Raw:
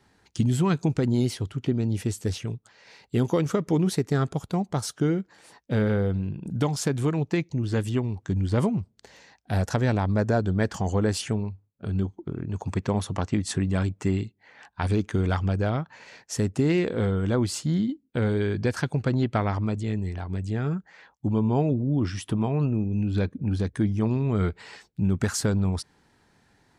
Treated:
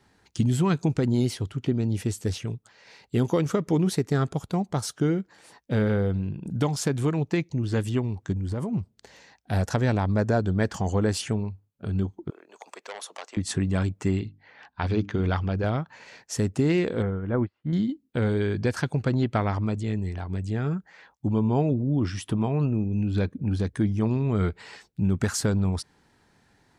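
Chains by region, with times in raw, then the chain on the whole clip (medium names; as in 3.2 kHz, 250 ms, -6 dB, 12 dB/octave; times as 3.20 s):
8.32–8.73 s: peaking EQ 3.5 kHz -6.5 dB 1.8 oct + compression 10:1, threshold -25 dBFS
12.30–13.37 s: high-pass 530 Hz 24 dB/octave + peaking EQ 1.5 kHz -4.5 dB 2.5 oct + transformer saturation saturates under 2.4 kHz
14.19–15.64 s: low-pass 5.3 kHz 24 dB/octave + hum notches 50/100/150/200/250/300 Hz
17.02–17.73 s: low-pass 2.2 kHz 24 dB/octave + upward expansion 2.5:1, over -40 dBFS
whole clip: none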